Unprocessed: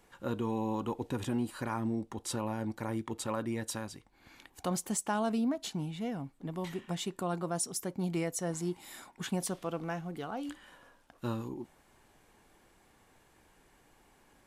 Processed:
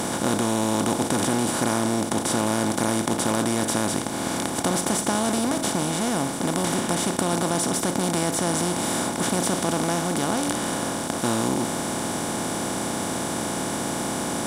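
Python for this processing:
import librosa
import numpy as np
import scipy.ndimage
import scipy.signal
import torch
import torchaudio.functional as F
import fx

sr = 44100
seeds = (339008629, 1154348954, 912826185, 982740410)

y = fx.bin_compress(x, sr, power=0.2)
y = y * librosa.db_to_amplitude(2.0)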